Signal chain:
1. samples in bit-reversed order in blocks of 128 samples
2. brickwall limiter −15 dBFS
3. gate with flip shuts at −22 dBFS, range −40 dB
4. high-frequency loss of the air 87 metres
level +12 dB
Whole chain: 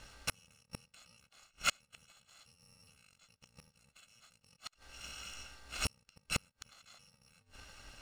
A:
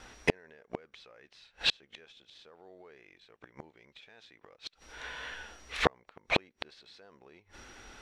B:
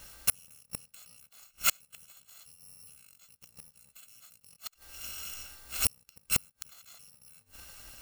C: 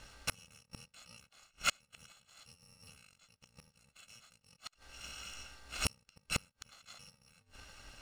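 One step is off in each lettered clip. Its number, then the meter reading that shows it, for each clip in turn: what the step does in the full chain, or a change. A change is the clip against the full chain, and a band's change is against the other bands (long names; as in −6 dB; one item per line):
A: 1, 8 kHz band −15.5 dB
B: 4, 8 kHz band +9.5 dB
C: 2, average gain reduction 2.0 dB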